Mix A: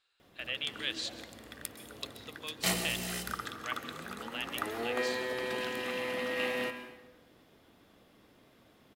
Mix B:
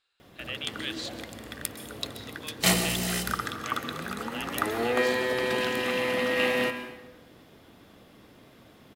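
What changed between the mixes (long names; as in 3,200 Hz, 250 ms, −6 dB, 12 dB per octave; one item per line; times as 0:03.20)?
background +7.5 dB
master: add parametric band 120 Hz +3 dB 1.8 octaves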